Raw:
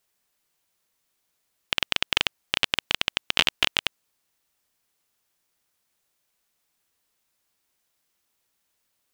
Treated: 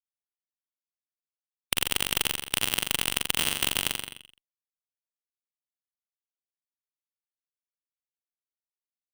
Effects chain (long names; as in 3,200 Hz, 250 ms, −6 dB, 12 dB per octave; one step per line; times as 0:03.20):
fuzz pedal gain 30 dB, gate −37 dBFS
flutter between parallel walls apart 7.3 metres, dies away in 0.54 s
every bin compressed towards the loudest bin 2 to 1
level +3.5 dB